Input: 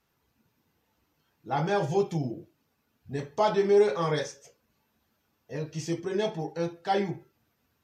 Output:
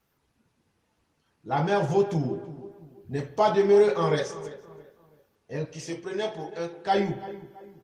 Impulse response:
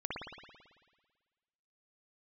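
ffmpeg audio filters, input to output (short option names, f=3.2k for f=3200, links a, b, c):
-filter_complex "[0:a]asettb=1/sr,asplit=3[a][b][c];[a]atrim=end=5.654[d];[b]atrim=start=5.65:end=6.85,asetpts=PTS-STARTPTS,afade=t=in:d=0.004:c=qsin,afade=t=out:st=1.196:d=0.004:c=qsin,lowshelf=f=360:g=-11.5[e];[c]atrim=start=6.846[f];[d][e]acrossfade=d=0.004:c1=hsin:c2=qsin[g];[g][f]acrossfade=d=0.004:c1=qsin:c2=hsin,asplit=2[h][i];[i]adelay=333,lowpass=f=1.8k:p=1,volume=-15dB,asplit=2[j][k];[k]adelay=333,lowpass=f=1.8k:p=1,volume=0.38,asplit=2[l][m];[m]adelay=333,lowpass=f=1.8k:p=1,volume=0.38[n];[h][j][l][n]amix=inputs=4:normalize=0,asplit=2[o][p];[1:a]atrim=start_sample=2205[q];[p][q]afir=irnorm=-1:irlink=0,volume=-16.5dB[r];[o][r]amix=inputs=2:normalize=0,volume=2dB" -ar 48000 -c:a libopus -b:a 24k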